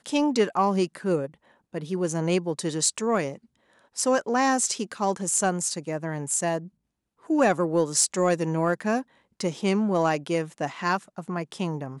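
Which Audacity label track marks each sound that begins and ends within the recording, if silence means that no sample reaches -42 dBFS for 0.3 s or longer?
1.740000	3.360000	sound
3.960000	6.680000	sound
7.260000	9.020000	sound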